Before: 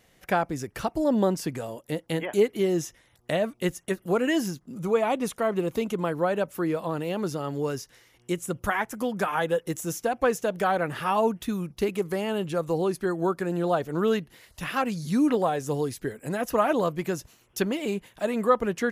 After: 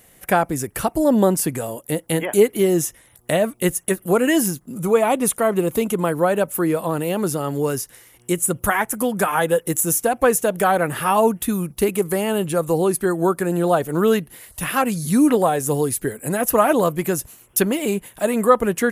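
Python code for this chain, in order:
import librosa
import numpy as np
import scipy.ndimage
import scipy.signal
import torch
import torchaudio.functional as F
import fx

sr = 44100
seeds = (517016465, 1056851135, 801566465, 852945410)

y = fx.high_shelf_res(x, sr, hz=7200.0, db=10.0, q=1.5)
y = y * 10.0 ** (7.0 / 20.0)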